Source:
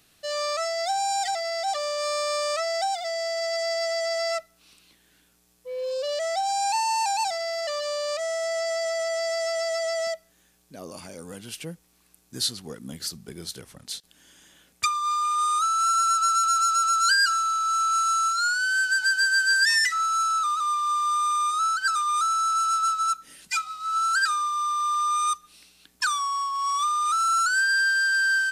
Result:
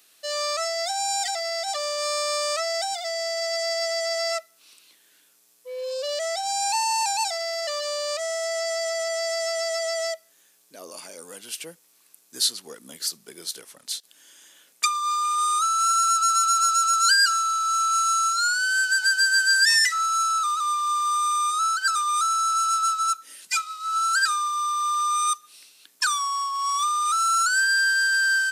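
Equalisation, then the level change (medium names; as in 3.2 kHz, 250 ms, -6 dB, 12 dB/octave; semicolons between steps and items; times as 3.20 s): high-pass 400 Hz 12 dB/octave; treble shelf 4.3 kHz +6.5 dB; band-stop 760 Hz, Q 14; 0.0 dB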